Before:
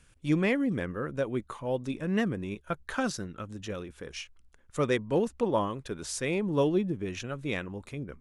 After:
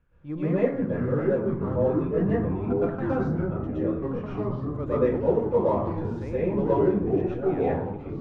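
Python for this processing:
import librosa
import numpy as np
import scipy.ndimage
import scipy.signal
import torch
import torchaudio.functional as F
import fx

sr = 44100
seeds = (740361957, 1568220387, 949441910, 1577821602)

p1 = scipy.signal.sosfilt(scipy.signal.butter(2, 1200.0, 'lowpass', fs=sr, output='sos'), x)
p2 = fx.peak_eq(p1, sr, hz=200.0, db=-2.5, octaves=0.77)
p3 = np.clip(10.0 ** (30.0 / 20.0) * p2, -1.0, 1.0) / 10.0 ** (30.0 / 20.0)
p4 = p2 + F.gain(torch.from_numpy(p3), -11.5).numpy()
p5 = fx.rev_plate(p4, sr, seeds[0], rt60_s=0.58, hf_ratio=0.5, predelay_ms=105, drr_db=-9.5)
p6 = fx.echo_pitch(p5, sr, ms=476, semitones=-4, count=3, db_per_echo=-3.0)
y = F.gain(torch.from_numpy(p6), -8.0).numpy()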